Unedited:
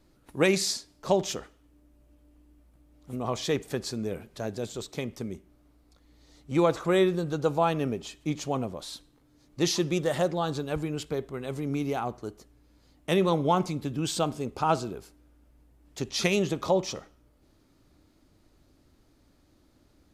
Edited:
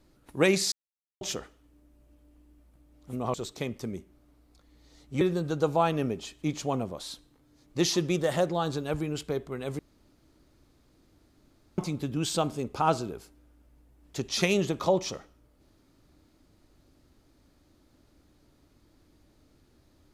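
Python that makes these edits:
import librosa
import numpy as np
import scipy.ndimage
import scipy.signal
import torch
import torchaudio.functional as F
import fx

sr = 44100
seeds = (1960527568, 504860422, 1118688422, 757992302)

y = fx.edit(x, sr, fx.silence(start_s=0.72, length_s=0.49),
    fx.cut(start_s=3.34, length_s=1.37),
    fx.cut(start_s=6.58, length_s=0.45),
    fx.room_tone_fill(start_s=11.61, length_s=1.99), tone=tone)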